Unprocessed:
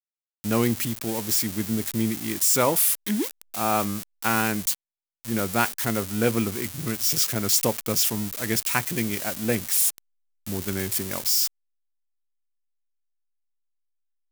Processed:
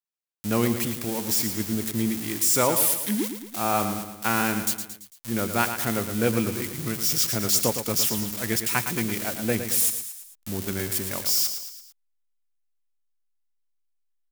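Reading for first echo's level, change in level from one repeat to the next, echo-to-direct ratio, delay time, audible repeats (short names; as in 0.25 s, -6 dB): -9.0 dB, -6.0 dB, -7.5 dB, 0.112 s, 4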